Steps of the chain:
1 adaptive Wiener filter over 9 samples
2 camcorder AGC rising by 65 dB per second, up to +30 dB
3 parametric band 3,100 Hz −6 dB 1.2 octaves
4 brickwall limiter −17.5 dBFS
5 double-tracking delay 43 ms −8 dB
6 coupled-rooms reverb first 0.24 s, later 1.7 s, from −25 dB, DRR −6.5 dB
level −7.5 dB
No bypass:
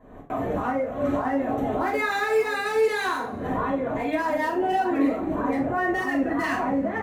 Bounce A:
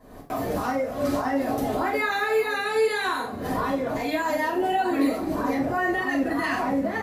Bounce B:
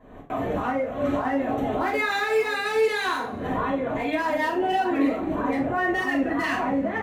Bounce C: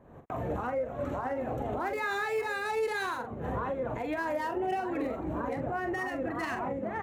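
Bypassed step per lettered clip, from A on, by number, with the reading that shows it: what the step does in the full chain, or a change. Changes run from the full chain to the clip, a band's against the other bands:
1, 8 kHz band +4.0 dB
3, 4 kHz band +4.0 dB
6, 125 Hz band +4.5 dB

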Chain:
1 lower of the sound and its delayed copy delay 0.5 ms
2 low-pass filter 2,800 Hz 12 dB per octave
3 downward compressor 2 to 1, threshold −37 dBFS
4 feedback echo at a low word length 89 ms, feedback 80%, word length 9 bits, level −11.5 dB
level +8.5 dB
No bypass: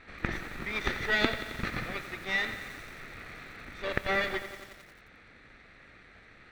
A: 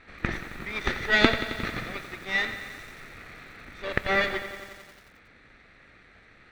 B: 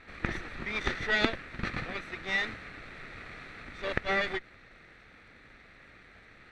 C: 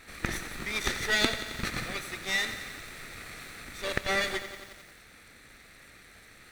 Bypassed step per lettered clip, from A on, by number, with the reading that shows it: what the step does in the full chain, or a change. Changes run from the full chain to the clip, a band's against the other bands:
3, change in momentary loudness spread +6 LU
4, 8 kHz band −2.5 dB
2, 8 kHz band +13.5 dB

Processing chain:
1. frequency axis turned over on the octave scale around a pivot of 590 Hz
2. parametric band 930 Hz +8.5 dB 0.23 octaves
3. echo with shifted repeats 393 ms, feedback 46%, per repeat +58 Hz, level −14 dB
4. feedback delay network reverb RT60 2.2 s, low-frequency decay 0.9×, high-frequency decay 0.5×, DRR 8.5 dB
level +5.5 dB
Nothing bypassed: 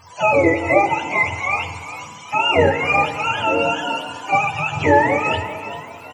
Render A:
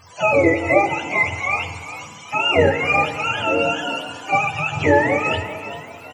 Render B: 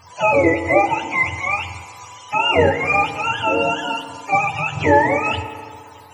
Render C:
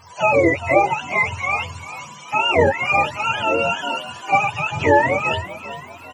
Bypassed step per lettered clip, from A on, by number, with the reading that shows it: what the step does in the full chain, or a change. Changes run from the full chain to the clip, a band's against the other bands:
2, 1 kHz band −3.0 dB
3, echo-to-direct ratio −7.0 dB to −8.5 dB
4, echo-to-direct ratio −7.0 dB to −13.0 dB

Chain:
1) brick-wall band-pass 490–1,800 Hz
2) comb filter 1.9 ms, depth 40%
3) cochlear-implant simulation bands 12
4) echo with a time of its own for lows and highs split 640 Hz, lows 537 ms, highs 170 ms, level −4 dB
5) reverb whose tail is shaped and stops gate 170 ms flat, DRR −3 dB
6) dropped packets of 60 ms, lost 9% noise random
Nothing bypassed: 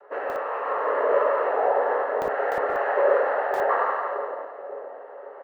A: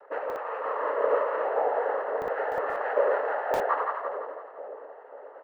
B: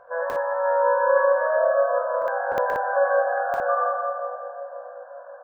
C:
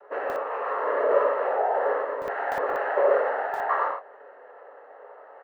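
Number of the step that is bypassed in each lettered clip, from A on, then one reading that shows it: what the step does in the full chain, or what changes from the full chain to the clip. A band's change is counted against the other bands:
5, change in integrated loudness −4.0 LU
3, change in momentary loudness spread +1 LU
4, change in momentary loudness spread −8 LU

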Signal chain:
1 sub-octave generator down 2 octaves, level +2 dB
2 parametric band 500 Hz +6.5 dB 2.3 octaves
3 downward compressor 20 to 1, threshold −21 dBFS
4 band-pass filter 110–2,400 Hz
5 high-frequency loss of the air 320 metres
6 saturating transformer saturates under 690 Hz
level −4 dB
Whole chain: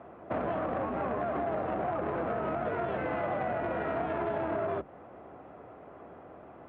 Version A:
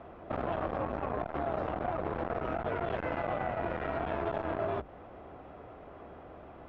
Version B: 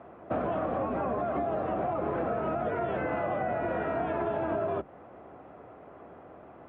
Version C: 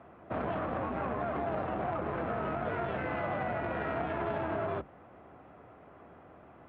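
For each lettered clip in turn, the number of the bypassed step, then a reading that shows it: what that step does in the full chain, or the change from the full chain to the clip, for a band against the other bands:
4, 125 Hz band +3.0 dB
6, change in crest factor −1.5 dB
2, 125 Hz band +3.0 dB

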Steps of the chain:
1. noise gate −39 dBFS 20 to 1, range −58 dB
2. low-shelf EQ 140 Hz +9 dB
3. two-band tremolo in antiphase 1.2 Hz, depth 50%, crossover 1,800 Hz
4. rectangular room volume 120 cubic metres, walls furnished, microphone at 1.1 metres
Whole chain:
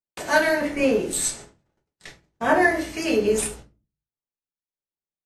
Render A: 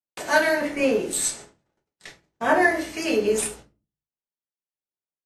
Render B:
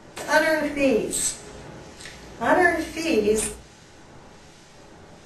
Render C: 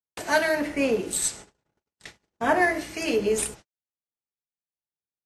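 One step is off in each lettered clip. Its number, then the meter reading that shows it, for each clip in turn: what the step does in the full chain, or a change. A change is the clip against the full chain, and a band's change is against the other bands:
2, 125 Hz band −4.0 dB
1, change in momentary loudness spread +13 LU
4, change in integrated loudness −3.0 LU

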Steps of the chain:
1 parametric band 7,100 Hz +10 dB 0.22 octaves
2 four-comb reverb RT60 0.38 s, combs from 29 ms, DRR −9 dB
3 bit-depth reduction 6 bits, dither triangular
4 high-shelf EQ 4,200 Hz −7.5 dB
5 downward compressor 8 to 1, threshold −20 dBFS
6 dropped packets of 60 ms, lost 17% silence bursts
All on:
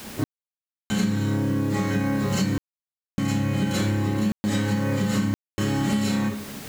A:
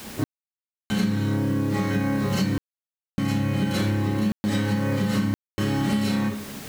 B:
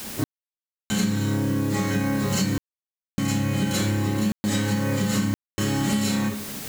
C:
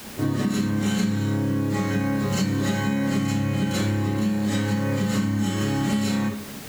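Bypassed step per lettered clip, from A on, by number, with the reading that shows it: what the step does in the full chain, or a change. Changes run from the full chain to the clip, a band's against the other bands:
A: 1, 8 kHz band −4.0 dB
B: 4, 8 kHz band +5.5 dB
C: 6, change in momentary loudness spread −5 LU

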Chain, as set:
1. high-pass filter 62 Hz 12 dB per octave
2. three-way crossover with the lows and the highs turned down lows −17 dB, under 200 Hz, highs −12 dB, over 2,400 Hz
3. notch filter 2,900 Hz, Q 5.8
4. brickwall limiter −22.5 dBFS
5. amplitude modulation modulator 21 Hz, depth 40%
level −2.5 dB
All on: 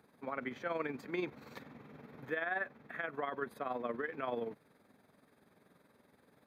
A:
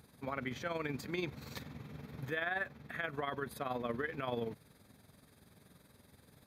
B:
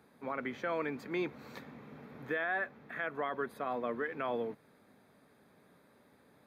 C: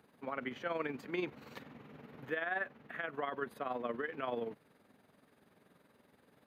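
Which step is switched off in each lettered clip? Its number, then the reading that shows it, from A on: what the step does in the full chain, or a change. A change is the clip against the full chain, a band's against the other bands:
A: 2, 125 Hz band +8.5 dB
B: 5, change in crest factor −2.5 dB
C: 3, 4 kHz band +3.0 dB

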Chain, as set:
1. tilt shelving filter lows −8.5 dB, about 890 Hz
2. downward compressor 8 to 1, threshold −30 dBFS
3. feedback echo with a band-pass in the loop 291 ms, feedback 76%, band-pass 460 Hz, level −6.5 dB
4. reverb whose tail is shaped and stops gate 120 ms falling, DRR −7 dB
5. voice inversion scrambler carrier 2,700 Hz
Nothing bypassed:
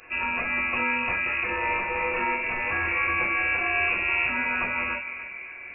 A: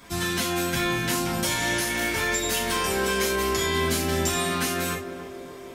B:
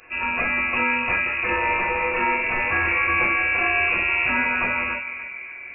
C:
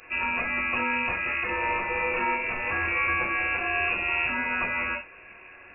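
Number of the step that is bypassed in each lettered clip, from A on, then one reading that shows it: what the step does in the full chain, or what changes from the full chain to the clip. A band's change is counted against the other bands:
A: 5, 2 kHz band −13.5 dB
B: 2, average gain reduction 3.5 dB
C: 3, change in momentary loudness spread −3 LU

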